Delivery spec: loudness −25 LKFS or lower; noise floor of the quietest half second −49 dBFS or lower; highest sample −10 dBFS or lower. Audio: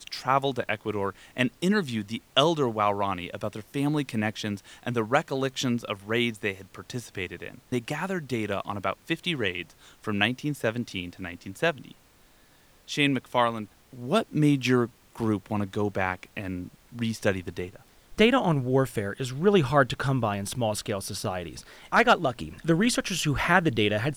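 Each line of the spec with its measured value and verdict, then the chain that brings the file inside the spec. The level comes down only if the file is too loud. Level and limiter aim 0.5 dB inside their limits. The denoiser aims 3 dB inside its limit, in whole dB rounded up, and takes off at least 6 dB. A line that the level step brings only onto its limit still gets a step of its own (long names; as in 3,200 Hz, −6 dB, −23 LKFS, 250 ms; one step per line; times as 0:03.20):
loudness −27.0 LKFS: in spec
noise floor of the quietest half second −58 dBFS: in spec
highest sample −5.5 dBFS: out of spec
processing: brickwall limiter −10.5 dBFS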